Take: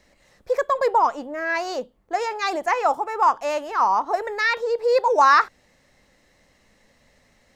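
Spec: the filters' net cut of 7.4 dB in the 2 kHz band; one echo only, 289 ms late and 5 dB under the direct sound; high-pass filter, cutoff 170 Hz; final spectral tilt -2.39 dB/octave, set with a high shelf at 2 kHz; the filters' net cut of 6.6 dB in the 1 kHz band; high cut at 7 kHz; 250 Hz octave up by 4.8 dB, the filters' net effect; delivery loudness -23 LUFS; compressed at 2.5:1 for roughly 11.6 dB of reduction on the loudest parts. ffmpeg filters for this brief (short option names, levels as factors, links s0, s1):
-af "highpass=170,lowpass=7000,equalizer=f=250:t=o:g=8,equalizer=f=1000:t=o:g=-7,highshelf=f=2000:g=3,equalizer=f=2000:t=o:g=-8.5,acompressor=threshold=0.02:ratio=2.5,aecho=1:1:289:0.562,volume=3.16"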